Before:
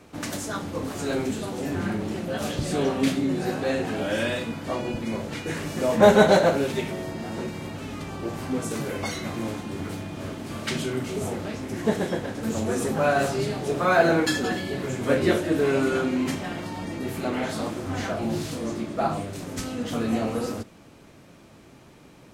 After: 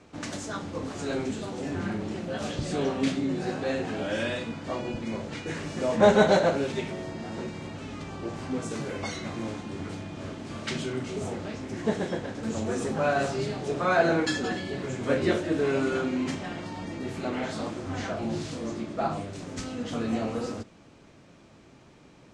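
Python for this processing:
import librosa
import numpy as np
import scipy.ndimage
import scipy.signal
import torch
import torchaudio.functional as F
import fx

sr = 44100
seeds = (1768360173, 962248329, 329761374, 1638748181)

y = scipy.signal.sosfilt(scipy.signal.butter(4, 8000.0, 'lowpass', fs=sr, output='sos'), x)
y = F.gain(torch.from_numpy(y), -3.5).numpy()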